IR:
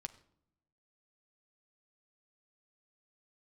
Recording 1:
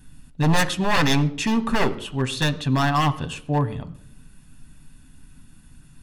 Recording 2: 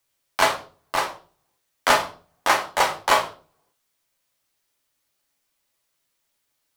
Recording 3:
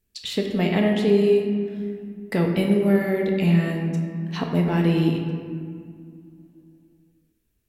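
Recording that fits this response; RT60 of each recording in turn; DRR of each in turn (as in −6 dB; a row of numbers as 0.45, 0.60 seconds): 1; non-exponential decay, 0.40 s, 2.2 s; 8.0, 1.0, 0.5 decibels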